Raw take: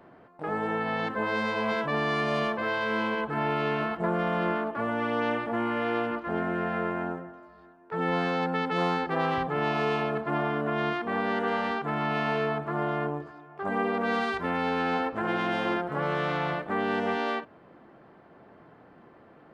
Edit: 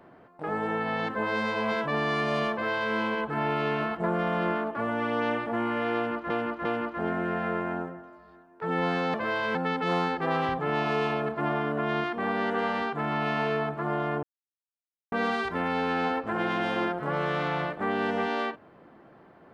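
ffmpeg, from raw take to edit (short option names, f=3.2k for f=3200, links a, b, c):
-filter_complex "[0:a]asplit=7[a][b][c][d][e][f][g];[a]atrim=end=6.302[h];[b]atrim=start=5.948:end=6.302[i];[c]atrim=start=5.948:end=8.442[j];[d]atrim=start=2.518:end=2.932[k];[e]atrim=start=8.438:end=13.12,asetpts=PTS-STARTPTS,afade=t=out:st=4.678:d=0.004:c=hsin[l];[f]atrim=start=13.12:end=14.01,asetpts=PTS-STARTPTS,volume=0[m];[g]atrim=start=14.01,asetpts=PTS-STARTPTS,afade=t=in:d=0.004:c=hsin[n];[h][i]acrossfade=d=0.004:c1=hsin:c2=hsin[o];[o][j]acrossfade=d=0.004:c1=hsin:c2=hsin[p];[p][k]acrossfade=d=0.004:c1=hsin:c2=hsin[q];[l][m][n]concat=n=3:v=0:a=1[r];[q][r]acrossfade=d=0.004:c1=hsin:c2=hsin"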